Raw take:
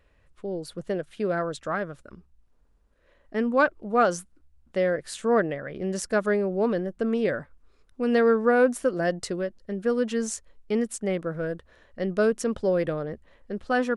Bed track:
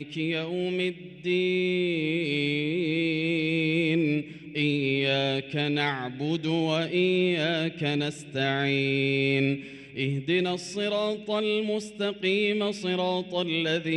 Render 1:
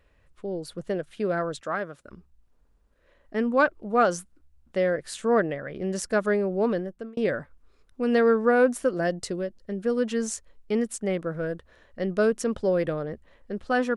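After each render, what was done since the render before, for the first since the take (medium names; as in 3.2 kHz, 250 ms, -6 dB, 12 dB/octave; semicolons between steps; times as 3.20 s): 1.61–2.05 s: high-pass 250 Hz 6 dB/octave; 6.73–7.17 s: fade out; 9.07–9.97 s: dynamic bell 1.4 kHz, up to -5 dB, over -41 dBFS, Q 0.74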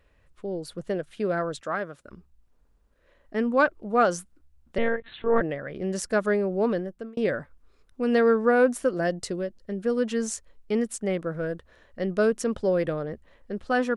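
4.78–5.41 s: monotone LPC vocoder at 8 kHz 230 Hz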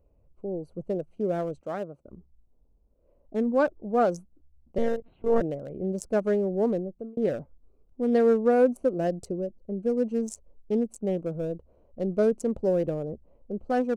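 local Wiener filter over 25 samples; high-order bell 2.2 kHz -9 dB 2.5 oct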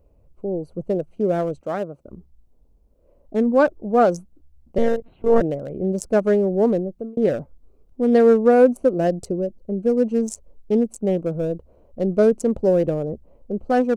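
trim +7 dB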